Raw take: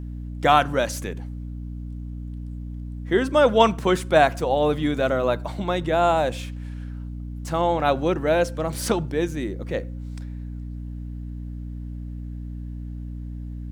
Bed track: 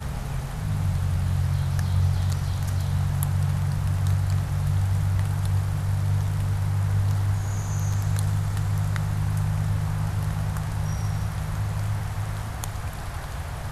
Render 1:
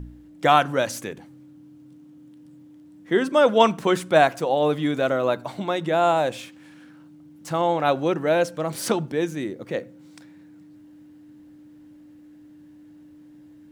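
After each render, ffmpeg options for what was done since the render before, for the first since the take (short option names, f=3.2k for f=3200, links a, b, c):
-af "bandreject=f=60:t=h:w=4,bandreject=f=120:t=h:w=4,bandreject=f=180:t=h:w=4,bandreject=f=240:t=h:w=4"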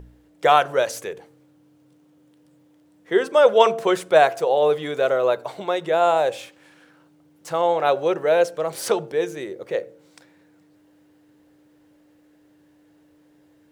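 -af "lowshelf=f=340:t=q:w=3:g=-6.5,bandreject=f=113.4:t=h:w=4,bandreject=f=226.8:t=h:w=4,bandreject=f=340.2:t=h:w=4,bandreject=f=453.6:t=h:w=4,bandreject=f=567:t=h:w=4,bandreject=f=680.4:t=h:w=4,bandreject=f=793.8:t=h:w=4"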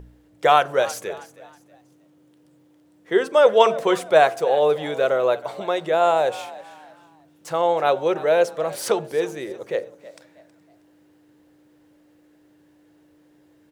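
-filter_complex "[0:a]asplit=4[a][b][c][d];[b]adelay=319,afreqshift=56,volume=-18dB[e];[c]adelay=638,afreqshift=112,volume=-27.4dB[f];[d]adelay=957,afreqshift=168,volume=-36.7dB[g];[a][e][f][g]amix=inputs=4:normalize=0"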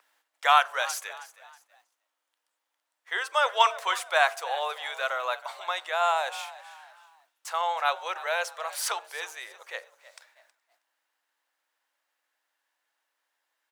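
-af "agate=range=-10dB:threshold=-54dB:ratio=16:detection=peak,highpass=f=900:w=0.5412,highpass=f=900:w=1.3066"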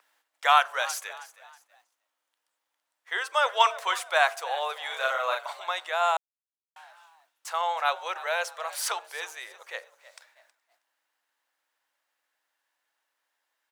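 -filter_complex "[0:a]asettb=1/sr,asplit=3[a][b][c];[a]atrim=end=4.874[d];[b]atrim=start=4.87:end=5.53,asetpts=PTS-STARTPTS,afade=t=in:d=0.004:c=qsin,afade=t=out:st=0.656:d=0.004:c=qsin,asplit=2[e][f];[f]adelay=38,volume=-2.5dB[g];[e][g]amix=inputs=2:normalize=0,atrim=end_sample=29106[h];[c]atrim=start=5.526[i];[d][h]acrossfade=d=0.004:c1=hsin:c2=qsin[j];[j][i]acrossfade=d=0.004:c1=qsin:c2=hsin,asplit=3[k][l][m];[k]atrim=end=6.17,asetpts=PTS-STARTPTS,afade=t=out:st=6.166:d=0.004:c=hsin[n];[l]atrim=start=6.17:end=6.76,asetpts=PTS-STARTPTS,volume=0[o];[m]atrim=start=6.76,asetpts=PTS-STARTPTS,afade=t=in:d=0.004:c=hsin[p];[n][o][p]concat=n=3:v=0:a=1"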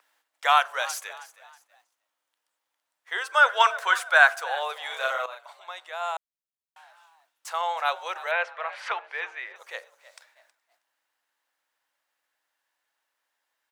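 -filter_complex "[0:a]asettb=1/sr,asplit=3[a][b][c];[a]atrim=end=3.294[d];[b]atrim=start=3.29:end=4.63,asetpts=PTS-STARTPTS,afade=t=in:d=0.004:c=qsin,afade=t=out:st=1.336:d=0.004:c=qsin,equalizer=f=1.5k:w=4.3:g=12[e];[c]atrim=start=4.626[f];[d][e]acrossfade=d=0.004:c1=hsin:c2=qsin[g];[g][f]acrossfade=d=0.004:c1=qsin:c2=hsin,asettb=1/sr,asplit=3[h][i][j];[h]atrim=end=8.314[k];[i]atrim=start=8.31:end=9.56,asetpts=PTS-STARTPTS,afade=t=in:d=0.004:c=qsin,afade=t=out:st=1.246:d=0.004:c=qsin,lowpass=f=2.2k:t=q:w=1.9[l];[j]atrim=start=9.556[m];[k][l]acrossfade=d=0.004:c1=hsin:c2=qsin[n];[n][m]acrossfade=d=0.004:c1=qsin:c2=hsin,asplit=2[o][p];[o]atrim=end=5.26,asetpts=PTS-STARTPTS,afade=t=out:st=5.256:d=0.004:c=hsin:silence=0.211349[q];[p]atrim=start=5.26,asetpts=PTS-STARTPTS,afade=t=in:d=2.3:silence=0.211349[r];[q][r]concat=n=2:v=0:a=1"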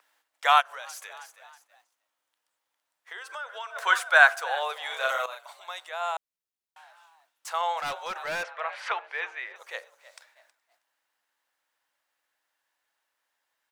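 -filter_complex "[0:a]asplit=3[a][b][c];[a]afade=t=out:st=0.6:d=0.02[d];[b]acompressor=threshold=-38dB:ratio=4:attack=3.2:release=140:knee=1:detection=peak,afade=t=in:st=0.6:d=0.02,afade=t=out:st=3.75:d=0.02[e];[c]afade=t=in:st=3.75:d=0.02[f];[d][e][f]amix=inputs=3:normalize=0,asettb=1/sr,asplit=3[g][h][i];[g]atrim=end=5.094[j];[h]atrim=start=5.09:end=5.89,asetpts=PTS-STARTPTS,afade=t=in:d=0.004:c=qsin,afade=t=out:st=0.796:d=0.004:c=qsin,aemphasis=mode=production:type=cd[k];[i]atrim=start=5.886[l];[j][k]acrossfade=d=0.004:c1=hsin:c2=qsin[m];[m][l]acrossfade=d=0.004:c1=qsin:c2=hsin,asettb=1/sr,asplit=3[n][o][p];[n]atrim=end=7.804[q];[o]atrim=start=7.8:end=8.6,asetpts=PTS-STARTPTS,afade=t=in:d=0.004:c=qsin,afade=t=out:st=0.796:d=0.004:c=qsin,asoftclip=type=hard:threshold=-28.5dB[r];[p]atrim=start=8.596[s];[q][r]acrossfade=d=0.004:c1=hsin:c2=qsin[t];[t][s]acrossfade=d=0.004:c1=qsin:c2=hsin"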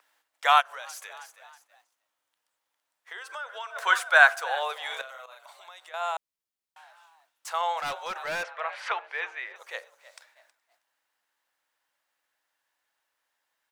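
-filter_complex "[0:a]asettb=1/sr,asplit=3[a][b][c];[a]atrim=end=5.014[d];[b]atrim=start=5.01:end=5.94,asetpts=PTS-STARTPTS,afade=t=in:d=0.004:c=qsin,afade=t=out:st=0.926:d=0.004:c=qsin,acompressor=threshold=-46dB:ratio=3:attack=3.2:release=140:knee=1:detection=peak[e];[c]atrim=start=5.936[f];[d][e]acrossfade=d=0.004:c1=hsin:c2=qsin[g];[g][f]acrossfade=d=0.004:c1=qsin:c2=hsin"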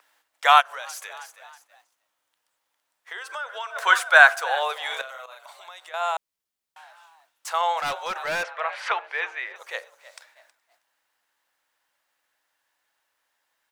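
-af "volume=4.5dB,alimiter=limit=-1dB:level=0:latency=1"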